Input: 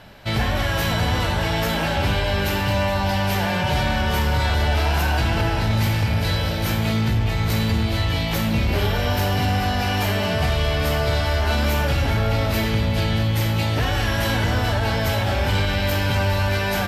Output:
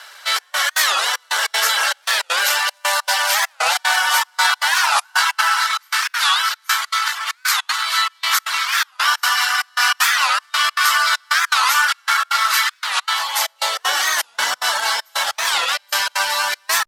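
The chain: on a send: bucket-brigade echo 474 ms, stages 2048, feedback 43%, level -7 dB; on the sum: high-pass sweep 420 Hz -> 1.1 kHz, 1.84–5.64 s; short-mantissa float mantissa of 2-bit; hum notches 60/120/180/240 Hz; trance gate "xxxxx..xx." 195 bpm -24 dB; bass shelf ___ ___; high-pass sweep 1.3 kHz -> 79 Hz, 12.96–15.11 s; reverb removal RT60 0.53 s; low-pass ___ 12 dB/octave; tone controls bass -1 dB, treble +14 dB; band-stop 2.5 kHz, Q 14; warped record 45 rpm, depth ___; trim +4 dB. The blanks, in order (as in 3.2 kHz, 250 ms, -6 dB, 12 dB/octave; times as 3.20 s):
240 Hz, -12 dB, 9.5 kHz, 250 cents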